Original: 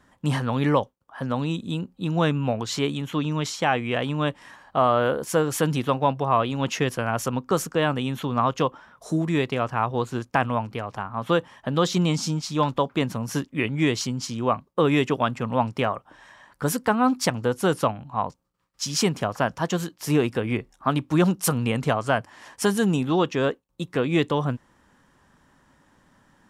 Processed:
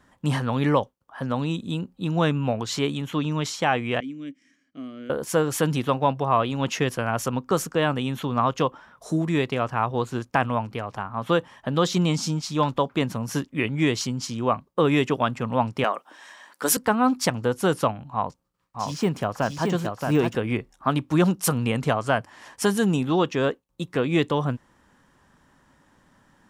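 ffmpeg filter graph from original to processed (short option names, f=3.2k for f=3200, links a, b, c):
-filter_complex "[0:a]asettb=1/sr,asplit=3[a][b][c];[a]atrim=end=4.004[d];[b]atrim=start=4:end=5.1,asetpts=PTS-STARTPTS,afade=t=in:d=0.004:c=qsin,afade=t=out:st=1.096:d=0.004:c=qsin,asplit=3[e][f][g];[e]bandpass=f=270:t=q:w=8,volume=0dB[h];[f]bandpass=f=2.29k:t=q:w=8,volume=-6dB[i];[g]bandpass=f=3.01k:t=q:w=8,volume=-9dB[j];[h][i][j]amix=inputs=3:normalize=0,highshelf=f=4.6k:t=q:w=3:g=9.5[k];[c]atrim=start=5.096[l];[d][k]acrossfade=d=0.004:c1=hsin:c2=qsin[m];[m][l]acrossfade=d=0.004:c1=qsin:c2=hsin,asettb=1/sr,asplit=3[n][o][p];[n]atrim=end=15.844[q];[o]atrim=start=15.84:end=16.77,asetpts=PTS-STARTPTS,afade=t=in:d=0.004:c=qsin,afade=t=out:st=0.926:d=0.004:c=qsin,highpass=f=240:w=0.5412,highpass=f=240:w=1.3066,highshelf=f=2.2k:g=9[r];[p]atrim=start=16.766[s];[q][r]acrossfade=d=0.004:c1=hsin:c2=qsin[t];[t][s]acrossfade=d=0.004:c1=qsin:c2=hsin,asettb=1/sr,asplit=3[u][v][w];[u]atrim=end=18.124[x];[v]atrim=start=18.12:end=20.35,asetpts=PTS-STARTPTS,afade=t=in:d=0.004:c=qsin,afade=t=out:st=2.226:d=0.004:c=qsin,deesser=0.9,aecho=1:1:624:0.631,atrim=end_sample=98343[y];[w]atrim=start=20.346[z];[x][y]acrossfade=d=0.004:c1=hsin:c2=qsin[aa];[aa][z]acrossfade=d=0.004:c1=qsin:c2=hsin"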